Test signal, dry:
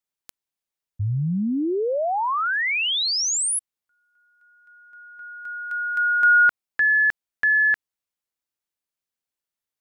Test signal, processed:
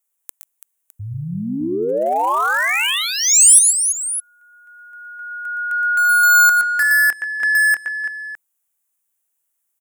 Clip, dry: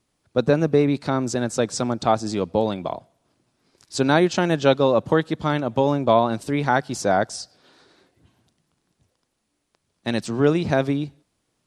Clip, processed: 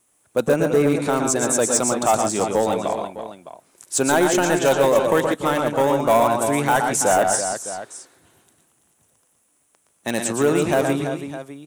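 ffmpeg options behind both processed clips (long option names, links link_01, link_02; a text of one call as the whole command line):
ffmpeg -i in.wav -filter_complex "[0:a]asplit=2[link_01][link_02];[link_02]highpass=frequency=720:poles=1,volume=14dB,asoftclip=type=tanh:threshold=-3dB[link_03];[link_01][link_03]amix=inputs=2:normalize=0,lowpass=frequency=1700:poles=1,volume=-6dB,equalizer=frequency=2900:width=2.4:gain=2,aecho=1:1:118|138|334|609:0.501|0.251|0.335|0.188,asplit=2[link_04][link_05];[link_05]aeval=exprs='0.282*(abs(mod(val(0)/0.282+3,4)-2)-1)':channel_layout=same,volume=-10dB[link_06];[link_04][link_06]amix=inputs=2:normalize=0,aexciter=amount=9.4:drive=8.1:freq=6900,volume=-4dB" out.wav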